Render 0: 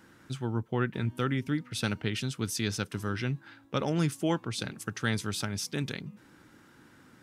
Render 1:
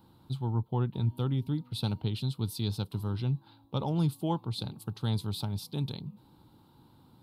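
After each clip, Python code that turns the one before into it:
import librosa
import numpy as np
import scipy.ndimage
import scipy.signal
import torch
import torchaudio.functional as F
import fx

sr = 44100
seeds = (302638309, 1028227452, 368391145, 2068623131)

y = fx.curve_eq(x, sr, hz=(130.0, 250.0, 610.0, 900.0, 1800.0, 4100.0, 6000.0, 13000.0), db=(0, -7, -9, 0, -28, -1, -23, -3))
y = y * 10.0 ** (3.5 / 20.0)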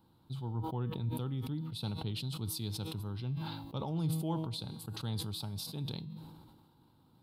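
y = fx.comb_fb(x, sr, f0_hz=160.0, decay_s=0.8, harmonics='all', damping=0.0, mix_pct=60)
y = fx.sustainer(y, sr, db_per_s=37.0)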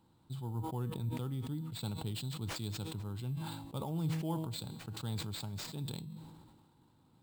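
y = fx.sample_hold(x, sr, seeds[0], rate_hz=12000.0, jitter_pct=0)
y = y * 10.0 ** (-1.5 / 20.0)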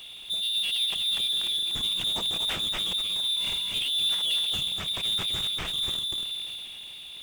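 y = x + 10.0 ** (-6.5 / 20.0) * np.pad(x, (int(243 * sr / 1000.0), 0))[:len(x)]
y = fx.freq_invert(y, sr, carrier_hz=3700)
y = fx.power_curve(y, sr, exponent=0.5)
y = y * 10.0 ** (3.0 / 20.0)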